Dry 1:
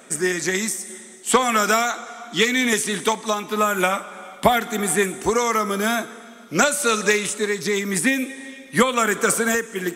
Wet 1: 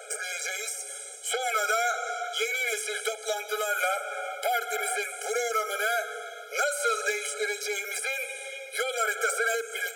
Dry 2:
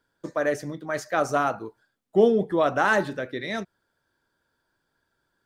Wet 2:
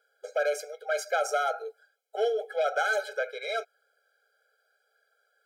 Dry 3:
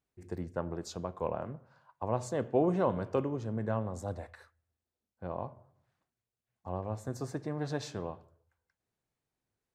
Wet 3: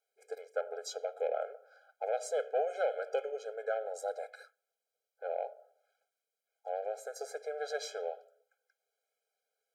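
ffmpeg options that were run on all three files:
ffmpeg -i in.wav -filter_complex "[0:a]acrossover=split=710|2700|6700[link_01][link_02][link_03][link_04];[link_01]acompressor=threshold=-34dB:ratio=4[link_05];[link_02]acompressor=threshold=-28dB:ratio=4[link_06];[link_03]acompressor=threshold=-41dB:ratio=4[link_07];[link_04]acompressor=threshold=-39dB:ratio=4[link_08];[link_05][link_06][link_07][link_08]amix=inputs=4:normalize=0,asoftclip=type=tanh:threshold=-24dB,afftfilt=real='re*eq(mod(floor(b*sr/1024/420),2),1)':imag='im*eq(mod(floor(b*sr/1024/420),2),1)':win_size=1024:overlap=0.75,volume=5.5dB" out.wav

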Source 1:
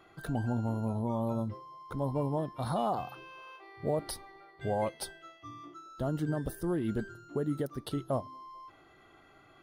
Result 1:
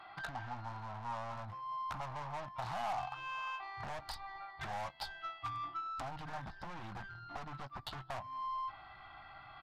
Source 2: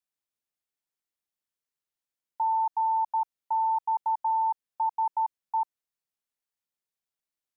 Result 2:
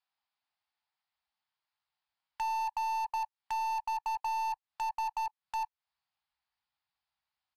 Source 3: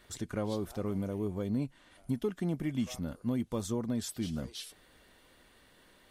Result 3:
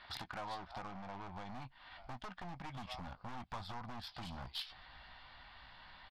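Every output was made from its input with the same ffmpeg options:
ffmpeg -i in.wav -filter_complex "[0:a]asplit=2[link_01][link_02];[link_02]adelay=16,volume=-10dB[link_03];[link_01][link_03]amix=inputs=2:normalize=0,aresample=11025,asoftclip=type=hard:threshold=-30.5dB,aresample=44100,aeval=exprs='0.0447*(cos(1*acos(clip(val(0)/0.0447,-1,1)))-cos(1*PI/2))+0.00794*(cos(2*acos(clip(val(0)/0.0447,-1,1)))-cos(2*PI/2))+0.01*(cos(5*acos(clip(val(0)/0.0447,-1,1)))-cos(5*PI/2))+0.00891*(cos(7*acos(clip(val(0)/0.0447,-1,1)))-cos(7*PI/2))':channel_layout=same,acompressor=threshold=-44dB:ratio=20,asubboost=boost=4:cutoff=160,aeval=exprs='0.0112*(abs(mod(val(0)/0.0112+3,4)-2)-1)':channel_layout=same,lowshelf=frequency=600:width_type=q:width=3:gain=-10,volume=7.5dB" -ar 32000 -c:a libvorbis -b:a 128k out.ogg

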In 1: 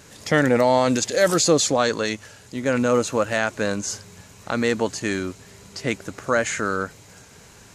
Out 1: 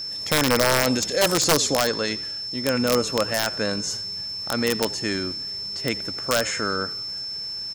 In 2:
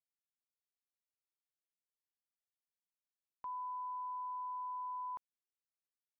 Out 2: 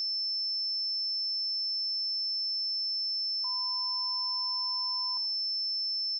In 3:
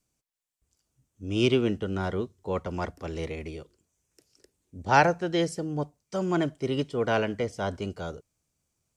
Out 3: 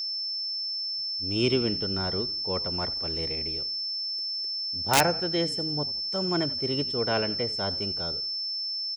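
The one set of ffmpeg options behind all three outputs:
ffmpeg -i in.wav -filter_complex "[0:a]asplit=5[link_01][link_02][link_03][link_04][link_05];[link_02]adelay=86,afreqshift=-40,volume=-18.5dB[link_06];[link_03]adelay=172,afreqshift=-80,volume=-25.4dB[link_07];[link_04]adelay=258,afreqshift=-120,volume=-32.4dB[link_08];[link_05]adelay=344,afreqshift=-160,volume=-39.3dB[link_09];[link_01][link_06][link_07][link_08][link_09]amix=inputs=5:normalize=0,aeval=exprs='val(0)+0.0447*sin(2*PI*5300*n/s)':channel_layout=same,aeval=exprs='(mod(2.82*val(0)+1,2)-1)/2.82':channel_layout=same,volume=-2dB" out.wav

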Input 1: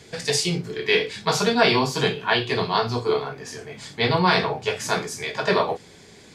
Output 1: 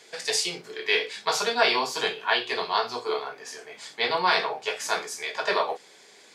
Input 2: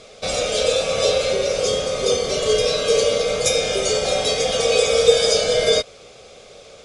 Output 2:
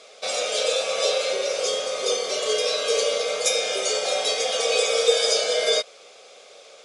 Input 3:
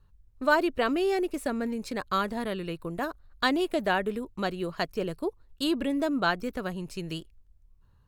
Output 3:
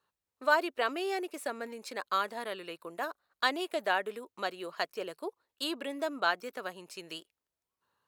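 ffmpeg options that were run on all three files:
ffmpeg -i in.wav -af "highpass=520,volume=-2dB" out.wav

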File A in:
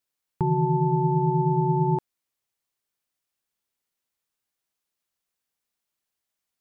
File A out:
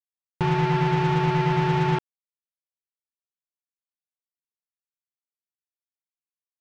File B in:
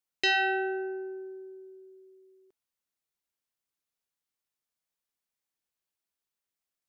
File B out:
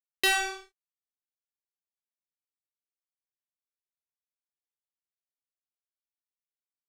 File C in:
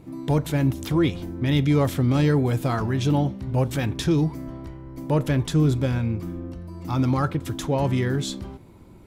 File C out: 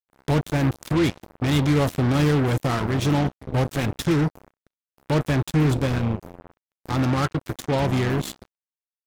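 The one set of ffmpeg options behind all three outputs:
ffmpeg -i in.wav -af "acrusher=bits=3:mix=0:aa=0.5" out.wav

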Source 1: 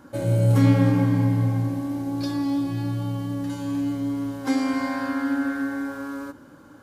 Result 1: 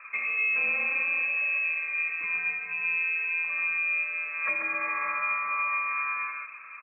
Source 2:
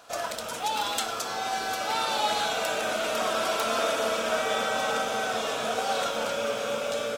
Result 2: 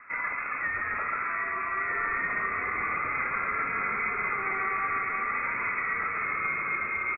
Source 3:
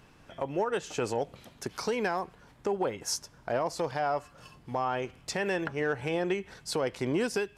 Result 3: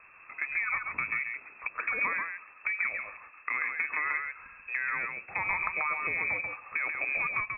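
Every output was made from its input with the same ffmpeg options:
ffmpeg -i in.wav -filter_complex "[0:a]lowpass=frequency=2300:width_type=q:width=0.5098,lowpass=frequency=2300:width_type=q:width=0.6013,lowpass=frequency=2300:width_type=q:width=0.9,lowpass=frequency=2300:width_type=q:width=2.563,afreqshift=-2700,equalizer=frequency=1200:width=4.6:gain=8,acrossover=split=560[link_01][link_02];[link_02]acompressor=threshold=-30dB:ratio=6[link_03];[link_01][link_03]amix=inputs=2:normalize=0,aecho=1:1:137:0.596,volume=1.5dB" out.wav

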